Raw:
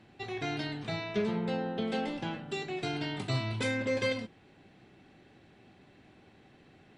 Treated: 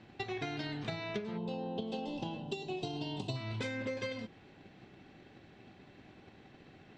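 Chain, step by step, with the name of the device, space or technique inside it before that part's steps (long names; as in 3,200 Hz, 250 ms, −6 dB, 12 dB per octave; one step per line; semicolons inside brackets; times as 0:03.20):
low-pass filter 7,100 Hz 24 dB per octave
gain on a spectral selection 0:01.37–0:03.36, 1,100–2,500 Hz −17 dB
drum-bus smash (transient designer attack +7 dB, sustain +1 dB; downward compressor 10 to 1, threshold −35 dBFS, peak gain reduction 15 dB; soft clipping −25.5 dBFS, distortion −26 dB)
level +1 dB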